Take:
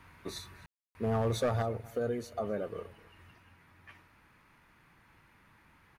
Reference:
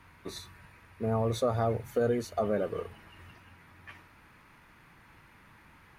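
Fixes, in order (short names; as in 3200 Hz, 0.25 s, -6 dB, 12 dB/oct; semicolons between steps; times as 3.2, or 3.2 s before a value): clip repair -24 dBFS; room tone fill 0.66–0.95; inverse comb 0.256 s -23 dB; gain 0 dB, from 1.62 s +5.5 dB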